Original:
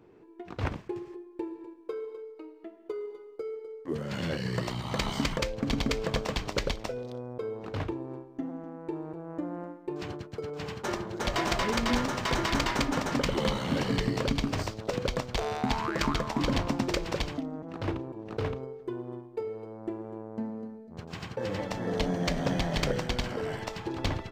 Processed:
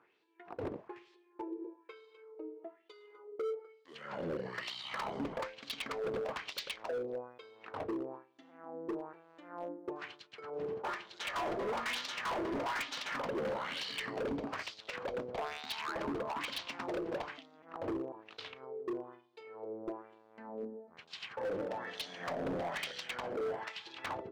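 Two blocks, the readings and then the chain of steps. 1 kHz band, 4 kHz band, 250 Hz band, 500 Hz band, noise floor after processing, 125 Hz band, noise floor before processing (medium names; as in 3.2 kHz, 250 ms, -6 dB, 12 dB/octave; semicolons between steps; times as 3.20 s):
-6.0 dB, -7.0 dB, -11.0 dB, -5.5 dB, -65 dBFS, -19.0 dB, -51 dBFS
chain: wah-wah 1.1 Hz 390–3900 Hz, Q 2.4; hard clipper -37 dBFS, distortion -7 dB; trim +4 dB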